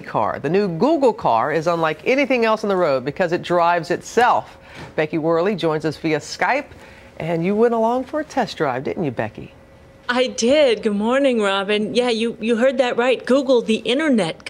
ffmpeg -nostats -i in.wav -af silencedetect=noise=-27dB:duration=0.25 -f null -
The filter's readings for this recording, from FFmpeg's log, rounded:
silence_start: 4.40
silence_end: 4.79 | silence_duration: 0.38
silence_start: 6.62
silence_end: 7.20 | silence_duration: 0.58
silence_start: 9.46
silence_end: 10.09 | silence_duration: 0.62